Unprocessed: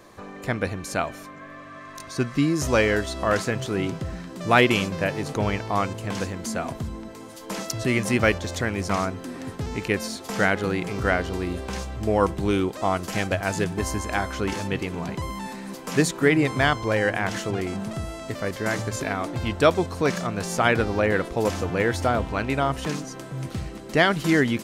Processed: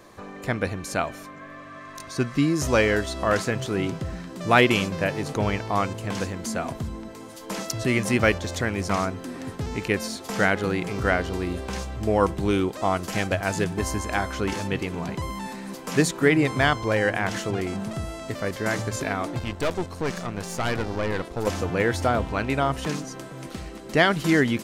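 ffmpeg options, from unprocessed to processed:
ffmpeg -i in.wav -filter_complex "[0:a]asettb=1/sr,asplit=3[link_01][link_02][link_03];[link_01]atrim=end=19.394[link_04];[link_02]atrim=start=19.39:end=21.47,asetpts=PTS-STARTPTS,afade=type=in:duration=0.004:curve=qsin,afade=type=out:start_time=2.076:duration=0.004:curve=qsin,aeval=exprs='(tanh(11.2*val(0)+0.75)-tanh(0.75))/11.2':channel_layout=same[link_05];[link_03]atrim=start=21.466[link_06];[link_04][link_05]acrossfade=duration=0.004:curve1=hsin:curve2=qsin[link_07];[link_07][link_06]acrossfade=duration=0.004:curve1=qsin:curve2=hsin,asettb=1/sr,asplit=3[link_08][link_09][link_10];[link_08]atrim=end=23.284[link_11];[link_09]atrim=start=23.28:end=23.85,asetpts=PTS-STARTPTS,afade=type=in:duration=0.004:curve=qsin,afade=type=out:start_time=0.566:duration=0.004:curve=qsin,equalizer=frequency=110:width=1.5:gain=-13.5[link_12];[link_10]atrim=start=23.846[link_13];[link_11][link_12]acrossfade=duration=0.004:curve1=hsin:curve2=qsin[link_14];[link_14][link_13]acrossfade=duration=0.004:curve1=qsin:curve2=hsin" out.wav

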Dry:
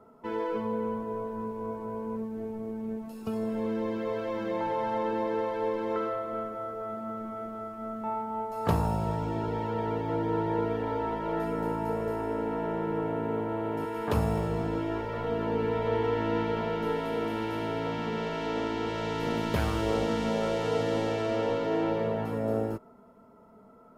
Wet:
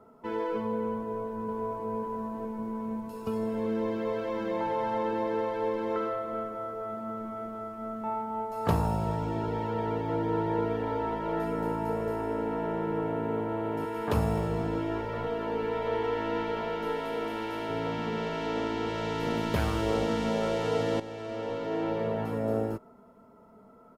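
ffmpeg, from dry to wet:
ffmpeg -i in.wav -filter_complex "[0:a]asplit=2[link_01][link_02];[link_02]afade=type=in:start_time=0.93:duration=0.01,afade=type=out:start_time=1.9:duration=0.01,aecho=0:1:550|1100|1650|2200|2750|3300|3850|4400|4950|5500|6050|6600:0.630957|0.473218|0.354914|0.266185|0.199639|0.149729|0.112297|0.0842226|0.063167|0.0473752|0.0355314|0.0266486[link_03];[link_01][link_03]amix=inputs=2:normalize=0,asettb=1/sr,asplit=3[link_04][link_05][link_06];[link_04]atrim=end=15.274[link_07];[link_05]atrim=start=15.27:end=17.7,asetpts=PTS-STARTPTS,afade=type=in:duration=0.004:curve=qsin,afade=type=out:start_time=2.426:duration=0.004:curve=qsin,equalizer=frequency=120:width=0.6:gain=-9[link_08];[link_06]atrim=start=17.696[link_09];[link_07][link_08]acrossfade=duration=0.004:curve1=hsin:curve2=qsin[link_10];[link_10][link_09]acrossfade=duration=0.004:curve1=qsin:curve2=hsin,asplit=2[link_11][link_12];[link_11]atrim=end=21,asetpts=PTS-STARTPTS,afade=type=out:start_time=20.996:duration=0.004:curve=hsin:silence=0.237137[link_13];[link_12]atrim=start=21,asetpts=PTS-STARTPTS,afade=type=in:duration=1.24:silence=0.237137[link_14];[link_13][link_14]concat=n=2:v=0:a=1" out.wav

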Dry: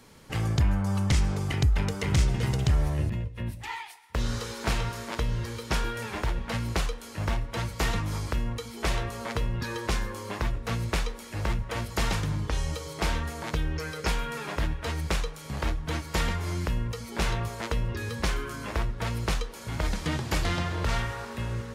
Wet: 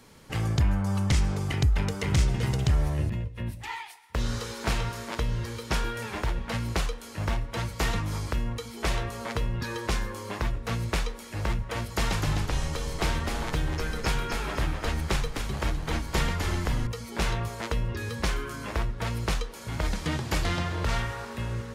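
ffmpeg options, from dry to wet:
ffmpeg -i in.wav -filter_complex "[0:a]asettb=1/sr,asplit=3[link_01][link_02][link_03];[link_01]atrim=end=11.874[link_04];[link_02]atrim=start=11.87:end=16.87,asetpts=PTS-STARTPTS,afade=type=in:duration=0.004:curve=qsin,afade=type=out:start_time=4.996:duration=0.004:curve=qsin,asplit=7[link_05][link_06][link_07][link_08][link_09][link_10][link_11];[link_06]adelay=255,afreqshift=-90,volume=-5dB[link_12];[link_07]adelay=510,afreqshift=-180,volume=-11.9dB[link_13];[link_08]adelay=765,afreqshift=-270,volume=-18.9dB[link_14];[link_09]adelay=1020,afreqshift=-360,volume=-25.8dB[link_15];[link_10]adelay=1275,afreqshift=-450,volume=-32.7dB[link_16];[link_11]adelay=1530,afreqshift=-540,volume=-39.7dB[link_17];[link_05][link_12][link_13][link_14][link_15][link_16][link_17]amix=inputs=7:normalize=0,atrim=end_sample=220500[link_18];[link_03]atrim=start=16.866[link_19];[link_04][link_18]acrossfade=duration=0.004:curve1=hsin:curve2=qsin[link_20];[link_20][link_19]acrossfade=duration=0.004:curve1=qsin:curve2=hsin" out.wav

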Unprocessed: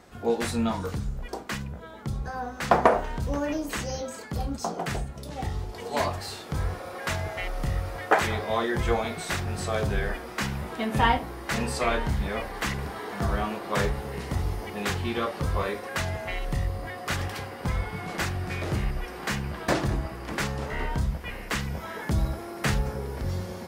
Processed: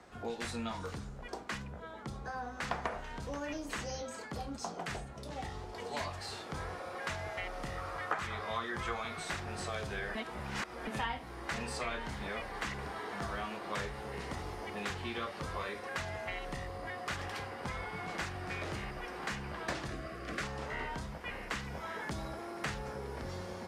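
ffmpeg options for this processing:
ffmpeg -i in.wav -filter_complex "[0:a]asettb=1/sr,asplit=3[link_01][link_02][link_03];[link_01]atrim=end=7.784[link_04];[link_02]atrim=start=7.78:end=9.2,asetpts=PTS-STARTPTS,afade=type=in:duration=0.004:curve=qsin,afade=type=out:start_time=1.416:duration=0.004:curve=qsin,equalizer=frequency=1200:width=2.8:gain=9[link_05];[link_03]atrim=start=9.196[link_06];[link_04][link_05]acrossfade=duration=0.004:curve1=hsin:curve2=qsin[link_07];[link_07][link_06]acrossfade=duration=0.004:curve1=qsin:curve2=hsin,asettb=1/sr,asplit=3[link_08][link_09][link_10];[link_08]atrim=end=19.904[link_11];[link_09]atrim=start=19.9:end=20.43,asetpts=PTS-STARTPTS,afade=type=in:duration=0.004:curve=qsin,afade=type=out:start_time=0.526:duration=0.004:curve=qsin,asuperstop=centerf=910:order=12:qfactor=3.2[link_12];[link_10]atrim=start=20.426[link_13];[link_11][link_12]acrossfade=duration=0.004:curve1=hsin:curve2=qsin[link_14];[link_14][link_13]acrossfade=duration=0.004:curve1=qsin:curve2=hsin,asplit=3[link_15][link_16][link_17];[link_15]atrim=end=10.152[link_18];[link_16]atrim=start=10.148:end=10.872,asetpts=PTS-STARTPTS,areverse[link_19];[link_17]atrim=start=10.868[link_20];[link_18][link_19]acrossfade=duration=0.004:curve1=hsin:curve2=hsin[link_21];[link_21][link_20]acrossfade=duration=0.004:curve1=hsin:curve2=hsin,lowpass=9400,equalizer=frequency=1100:width=0.55:gain=4,acrossover=split=90|200|1700[link_22][link_23][link_24][link_25];[link_22]acompressor=threshold=-42dB:ratio=4[link_26];[link_23]acompressor=threshold=-45dB:ratio=4[link_27];[link_24]acompressor=threshold=-34dB:ratio=4[link_28];[link_25]acompressor=threshold=-34dB:ratio=4[link_29];[link_26][link_27][link_28][link_29]amix=inputs=4:normalize=0,volume=-6dB" out.wav

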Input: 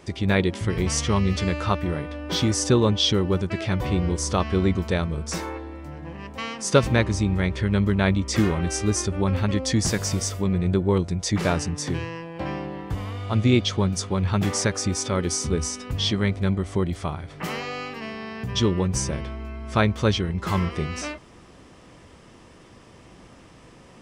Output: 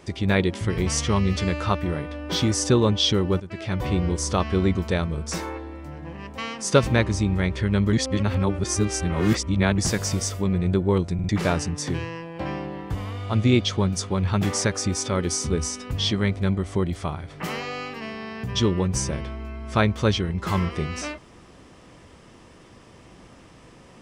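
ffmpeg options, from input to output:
ffmpeg -i in.wav -filter_complex "[0:a]asplit=7[link_01][link_02][link_03][link_04][link_05][link_06][link_07];[link_01]atrim=end=3.4,asetpts=PTS-STARTPTS,afade=type=out:start_time=3.396:duration=0.004:curve=hsin:silence=0.211349[link_08];[link_02]atrim=start=3.4:end=7.932,asetpts=PTS-STARTPTS,afade=type=in:duration=0.46:silence=0.211349[link_09];[link_03]atrim=start=7.928:end=9.782,asetpts=PTS-STARTPTS,areverse[link_10];[link_04]atrim=start=9.778:end=11.192[link_11];[link_05]atrim=start=11.138:end=11.192[link_12];[link_06]atrim=start=11.138:end=11.192[link_13];[link_07]atrim=start=11.288[link_14];[link_08][link_09]concat=n=2:v=0:a=1[link_15];[link_15][link_10]acrossfade=duration=0.004:curve1=hsin:curve2=hsin[link_16];[link_16][link_11]acrossfade=duration=0.004:curve1=hsin:curve2=hsin[link_17];[link_17][link_12]acrossfade=duration=0.004:curve1=hsin:curve2=hsin[link_18];[link_18][link_13]acrossfade=duration=0.004:curve1=hsin:curve2=hsin[link_19];[link_19][link_14]acrossfade=duration=0.004:curve1=hsin:curve2=hsin" out.wav

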